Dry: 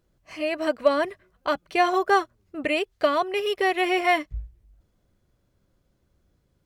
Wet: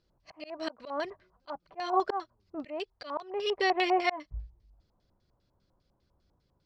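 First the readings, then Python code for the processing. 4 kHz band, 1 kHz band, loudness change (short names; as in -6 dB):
-6.0 dB, -7.0 dB, -8.0 dB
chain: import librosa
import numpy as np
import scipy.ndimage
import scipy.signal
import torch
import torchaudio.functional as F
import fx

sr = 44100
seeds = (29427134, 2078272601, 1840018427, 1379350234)

y = fx.filter_lfo_lowpass(x, sr, shape='square', hz=5.0, low_hz=930.0, high_hz=4700.0, q=4.1)
y = fx.auto_swell(y, sr, attack_ms=277.0)
y = y * librosa.db_to_amplitude(-5.5)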